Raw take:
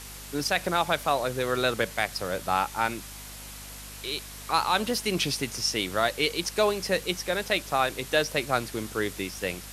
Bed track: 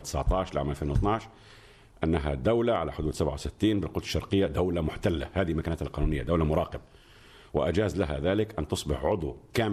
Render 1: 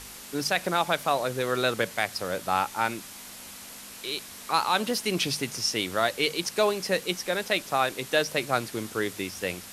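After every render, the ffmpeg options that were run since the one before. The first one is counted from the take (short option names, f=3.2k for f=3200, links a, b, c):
-af "bandreject=f=50:t=h:w=4,bandreject=f=100:t=h:w=4,bandreject=f=150:t=h:w=4"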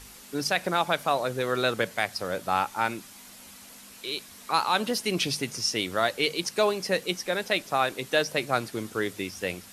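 -af "afftdn=nr=6:nf=-44"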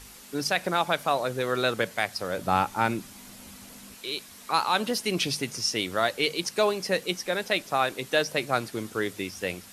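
-filter_complex "[0:a]asettb=1/sr,asplit=3[a][b][c];[a]atrim=end=2.384[d];[b]atrim=start=2.38:end=3.95,asetpts=PTS-STARTPTS,afade=t=in:d=0.004:c=qsin,afade=t=out:st=1.566:d=0.004:c=qsin,lowshelf=f=390:g=9.5[e];[c]atrim=start=3.946[f];[d][e]acrossfade=d=0.004:c1=hsin:c2=qsin[g];[g][f]acrossfade=d=0.004:c1=qsin:c2=hsin"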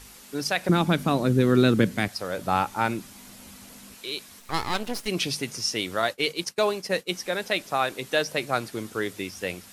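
-filter_complex "[0:a]asettb=1/sr,asplit=3[a][b][c];[a]atrim=end=0.694[d];[b]atrim=start=0.69:end=2.08,asetpts=PTS-STARTPTS,afade=t=in:d=0.004:c=qsin,afade=t=out:st=1.386:d=0.004:c=qsin,lowshelf=f=410:t=q:w=1.5:g=13.5[e];[c]atrim=start=2.076[f];[d][e]acrossfade=d=0.004:c1=hsin:c2=qsin[g];[g][f]acrossfade=d=0.004:c1=qsin:c2=hsin,asplit=3[h][i][j];[h]afade=t=out:st=4.39:d=0.02[k];[i]aeval=exprs='max(val(0),0)':c=same,afade=t=in:st=4.39:d=0.02,afade=t=out:st=5.07:d=0.02[l];[j]afade=t=in:st=5.07:d=0.02[m];[k][l][m]amix=inputs=3:normalize=0,asettb=1/sr,asplit=3[n][o][p];[n]atrim=end=6.024[q];[o]atrim=start=6.02:end=7.09,asetpts=PTS-STARTPTS,afade=t=in:d=0.004:c=qsin,afade=t=out:st=1.066:d=0.004:c=qsin,agate=range=-33dB:threshold=-31dB:ratio=3:release=100:detection=peak[r];[p]atrim=start=7.086[s];[q][r]acrossfade=d=0.004:c1=hsin:c2=qsin[t];[t][s]acrossfade=d=0.004:c1=qsin:c2=hsin"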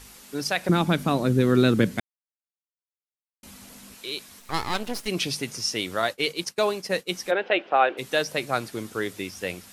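-filter_complex "[0:a]asplit=3[a][b][c];[a]afade=t=out:st=7.3:d=0.02[d];[b]highpass=300,equalizer=f=350:t=q:w=4:g=9,equalizer=f=520:t=q:w=4:g=7,equalizer=f=760:t=q:w=4:g=7,equalizer=f=1.5k:t=q:w=4:g=5,equalizer=f=2.9k:t=q:w=4:g=7,lowpass=f=3k:w=0.5412,lowpass=f=3k:w=1.3066,afade=t=in:st=7.3:d=0.02,afade=t=out:st=7.97:d=0.02[e];[c]afade=t=in:st=7.97:d=0.02[f];[d][e][f]amix=inputs=3:normalize=0,asplit=3[g][h][i];[g]atrim=end=2,asetpts=PTS-STARTPTS,afade=t=out:st=1.996:d=0.004:c=hsin[j];[h]atrim=start=2:end=3.43,asetpts=PTS-STARTPTS,volume=0[k];[i]atrim=start=3.43,asetpts=PTS-STARTPTS,afade=t=in:d=0.004:c=hsin[l];[j][k][l]concat=n=3:v=0:a=1"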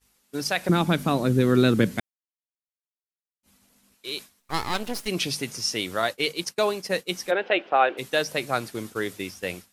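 -af "highshelf=f=12k:g=3.5,agate=range=-33dB:threshold=-34dB:ratio=3:detection=peak"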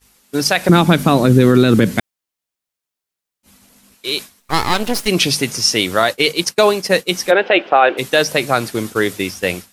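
-af "alimiter=level_in=12dB:limit=-1dB:release=50:level=0:latency=1"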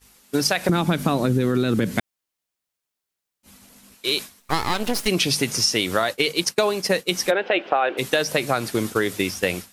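-af "acompressor=threshold=-17dB:ratio=6"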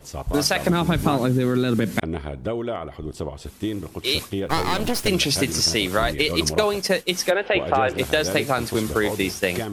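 -filter_complex "[1:a]volume=-2dB[a];[0:a][a]amix=inputs=2:normalize=0"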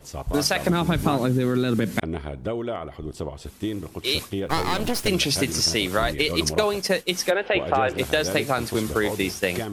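-af "volume=-1.5dB"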